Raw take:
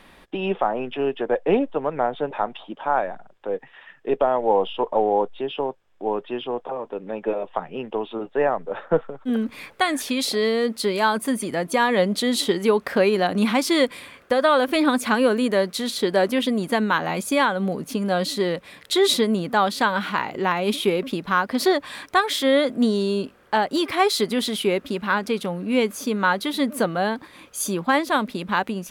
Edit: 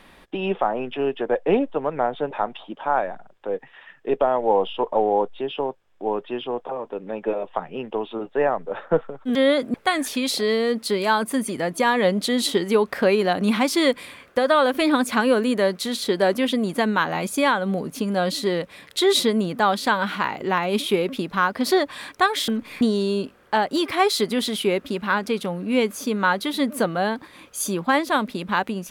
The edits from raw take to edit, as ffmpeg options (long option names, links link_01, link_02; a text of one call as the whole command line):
ffmpeg -i in.wav -filter_complex "[0:a]asplit=5[link_01][link_02][link_03][link_04][link_05];[link_01]atrim=end=9.352[link_06];[link_02]atrim=start=22.418:end=22.812[link_07];[link_03]atrim=start=9.678:end=22.422[link_08];[link_04]atrim=start=9.348:end=9.682[link_09];[link_05]atrim=start=22.808[link_10];[link_06][link_07]acrossfade=duration=0.004:curve1=hsin:curve2=hsin[link_11];[link_11][link_08]acrossfade=duration=0.004:curve1=hsin:curve2=hsin[link_12];[link_12][link_09]acrossfade=duration=0.004:curve1=hsin:curve2=hsin[link_13];[link_13][link_10]acrossfade=duration=0.004:curve1=hsin:curve2=hsin" out.wav